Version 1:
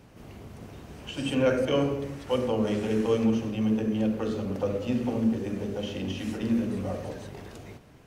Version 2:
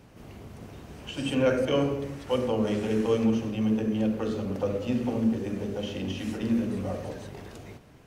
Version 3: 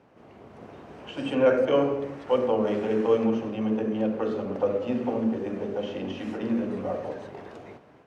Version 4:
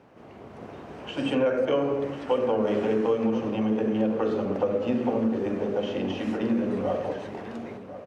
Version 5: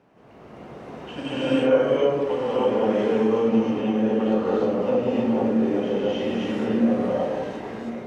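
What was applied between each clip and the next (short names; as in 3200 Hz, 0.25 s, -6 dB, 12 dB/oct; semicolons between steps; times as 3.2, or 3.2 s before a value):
nothing audible
AGC gain up to 5 dB; band-pass 730 Hz, Q 0.62
compressor 6:1, threshold -24 dBFS, peak gain reduction 9.5 dB; echo 1.044 s -13.5 dB; gain +3.5 dB
non-linear reverb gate 0.35 s rising, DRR -8 dB; gain -5 dB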